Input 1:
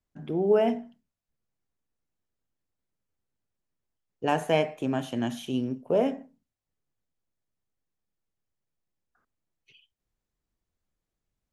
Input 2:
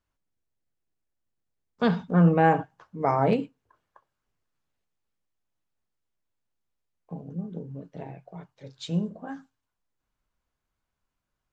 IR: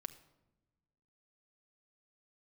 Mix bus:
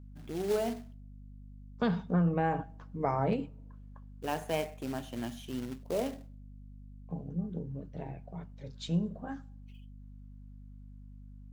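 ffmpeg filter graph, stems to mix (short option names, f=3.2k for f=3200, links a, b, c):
-filter_complex "[0:a]acrusher=bits=3:mode=log:mix=0:aa=0.000001,volume=-9.5dB,asplit=2[a][b];[b]volume=-19.5dB[c];[1:a]lowshelf=f=91:g=10,acompressor=threshold=-22dB:ratio=4,volume=-5.5dB,asplit=2[d][e];[e]volume=-8.5dB[f];[2:a]atrim=start_sample=2205[g];[c][f]amix=inputs=2:normalize=0[h];[h][g]afir=irnorm=-1:irlink=0[i];[a][d][i]amix=inputs=3:normalize=0,aeval=exprs='val(0)+0.00398*(sin(2*PI*50*n/s)+sin(2*PI*2*50*n/s)/2+sin(2*PI*3*50*n/s)/3+sin(2*PI*4*50*n/s)/4+sin(2*PI*5*50*n/s)/5)':c=same"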